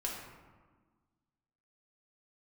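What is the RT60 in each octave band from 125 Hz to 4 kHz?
1.8, 2.0, 1.4, 1.5, 1.1, 0.70 s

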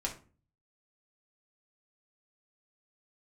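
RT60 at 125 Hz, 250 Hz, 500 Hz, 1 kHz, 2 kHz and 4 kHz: 0.75, 0.55, 0.40, 0.35, 0.30, 0.25 s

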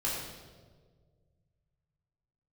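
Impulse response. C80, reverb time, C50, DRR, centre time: 2.5 dB, 1.6 s, 0.5 dB, -6.0 dB, 76 ms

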